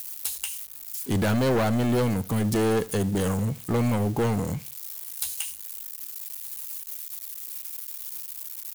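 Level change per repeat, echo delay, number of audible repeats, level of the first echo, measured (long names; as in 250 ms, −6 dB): −10.0 dB, 76 ms, 2, −20.5 dB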